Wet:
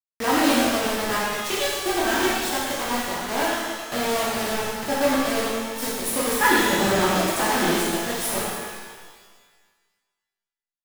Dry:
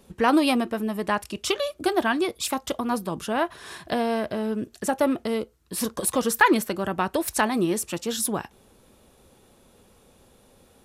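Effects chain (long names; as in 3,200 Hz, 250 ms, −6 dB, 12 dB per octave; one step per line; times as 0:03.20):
0:06.62–0:07.15: low-shelf EQ 470 Hz +9.5 dB
bit reduction 4 bits
reverb with rising layers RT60 1.5 s, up +12 semitones, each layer −8 dB, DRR −8 dB
level −8 dB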